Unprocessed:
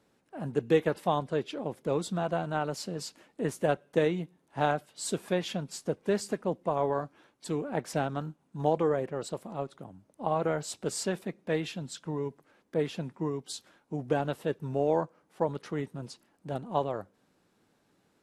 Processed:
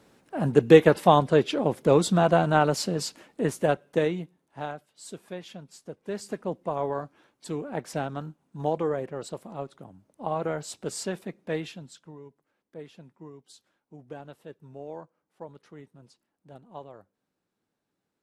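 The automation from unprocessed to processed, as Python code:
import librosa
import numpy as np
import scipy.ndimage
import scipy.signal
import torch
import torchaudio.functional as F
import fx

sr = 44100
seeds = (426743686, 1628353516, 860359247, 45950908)

y = fx.gain(x, sr, db=fx.line((2.63, 10.0), (4.17, 0.5), (4.75, -9.0), (5.94, -9.0), (6.38, -0.5), (11.59, -0.5), (12.21, -13.0)))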